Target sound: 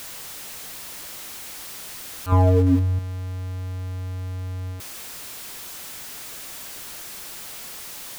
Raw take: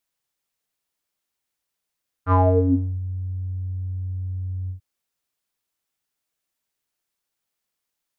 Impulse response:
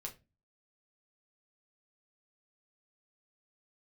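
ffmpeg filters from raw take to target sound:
-filter_complex "[0:a]aeval=exprs='val(0)+0.5*0.0631*sgn(val(0))':channel_layout=same,asettb=1/sr,asplit=3[link_01][link_02][link_03];[link_01]atrim=end=2.324[link_04];[link_02]atrim=start=2.32:end=2.99,asetpts=PTS-STARTPTS,afade=type=in:duration=0.004:curve=qsin,afade=type=out:start_time=0.666:duration=0.004:curve=qsin,lowshelf=frequency=480:gain=8[link_05];[link_03]atrim=start=2.986[link_06];[link_04][link_05]acrossfade=duration=0.004:curve1=hsin:curve2=qsin[link_07];[link_07][link_06]acrossfade=duration=0.004:curve1=qsin:curve2=hsin,volume=-6.5dB"

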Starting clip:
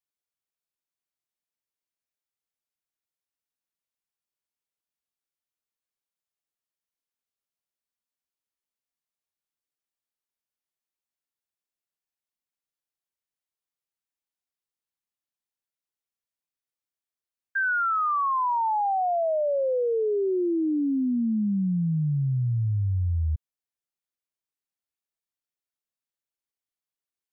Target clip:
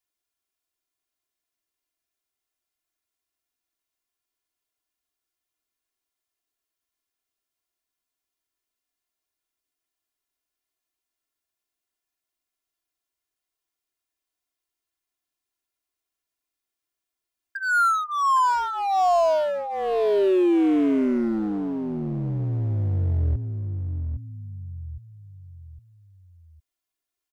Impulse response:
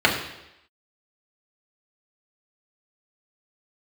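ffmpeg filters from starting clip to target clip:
-filter_complex "[0:a]aecho=1:1:2.9:0.94,asplit=2[link_01][link_02];[link_02]adelay=810,lowpass=frequency=1200:poles=1,volume=-8.5dB,asplit=2[link_03][link_04];[link_04]adelay=810,lowpass=frequency=1200:poles=1,volume=0.39,asplit=2[link_05][link_06];[link_06]adelay=810,lowpass=frequency=1200:poles=1,volume=0.39,asplit=2[link_07][link_08];[link_08]adelay=810,lowpass=frequency=1200:poles=1,volume=0.39[link_09];[link_01][link_03][link_05][link_07][link_09]amix=inputs=5:normalize=0,asplit=2[link_10][link_11];[link_11]aeval=exprs='0.0316*(abs(mod(val(0)/0.0316+3,4)-2)-1)':channel_layout=same,volume=-7dB[link_12];[link_10][link_12]amix=inputs=2:normalize=0"

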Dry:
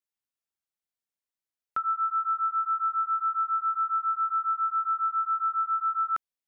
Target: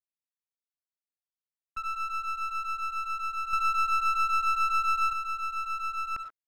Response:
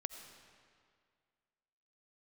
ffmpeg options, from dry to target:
-filter_complex "[0:a]agate=range=-19dB:threshold=-31dB:ratio=16:detection=peak[link_01];[1:a]atrim=start_sample=2205,atrim=end_sample=6174[link_02];[link_01][link_02]afir=irnorm=-1:irlink=0,asplit=2[link_03][link_04];[link_04]alimiter=level_in=7.5dB:limit=-24dB:level=0:latency=1:release=43,volume=-7.5dB,volume=0dB[link_05];[link_03][link_05]amix=inputs=2:normalize=0,aeval=exprs='clip(val(0),-1,0.0168)':channel_layout=same,asettb=1/sr,asplit=3[link_06][link_07][link_08];[link_06]atrim=end=3.534[link_09];[link_07]atrim=start=3.53:end=5.13,asetpts=PTS-STARTPTS,afade=type=in:duration=0.004:curve=qsin,afade=type=out:start_time=1.596:duration=0.004:curve=qsin,acontrast=69[link_10];[link_08]atrim=start=5.126[link_11];[link_09][link_10]acrossfade=duration=0.004:curve1=hsin:curve2=qsin[link_12];[link_12][link_11]acrossfade=duration=0.004:curve1=qsin:curve2=hsin,volume=-4dB"

